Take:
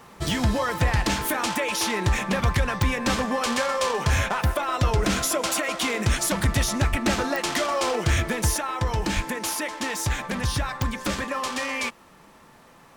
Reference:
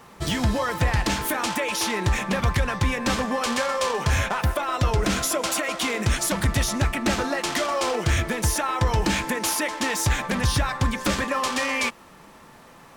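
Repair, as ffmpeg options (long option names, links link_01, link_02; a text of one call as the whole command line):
ffmpeg -i in.wav -filter_complex "[0:a]adeclick=threshold=4,asplit=3[link_01][link_02][link_03];[link_01]afade=type=out:start_time=6.9:duration=0.02[link_04];[link_02]highpass=frequency=140:width=0.5412,highpass=frequency=140:width=1.3066,afade=type=in:start_time=6.9:duration=0.02,afade=type=out:start_time=7.02:duration=0.02[link_05];[link_03]afade=type=in:start_time=7.02:duration=0.02[link_06];[link_04][link_05][link_06]amix=inputs=3:normalize=0,asplit=3[link_07][link_08][link_09];[link_07]afade=type=out:start_time=9.15:duration=0.02[link_10];[link_08]highpass=frequency=140:width=0.5412,highpass=frequency=140:width=1.3066,afade=type=in:start_time=9.15:duration=0.02,afade=type=out:start_time=9.27:duration=0.02[link_11];[link_09]afade=type=in:start_time=9.27:duration=0.02[link_12];[link_10][link_11][link_12]amix=inputs=3:normalize=0,asetnsamples=nb_out_samples=441:pad=0,asendcmd='8.57 volume volume 3.5dB',volume=0dB" out.wav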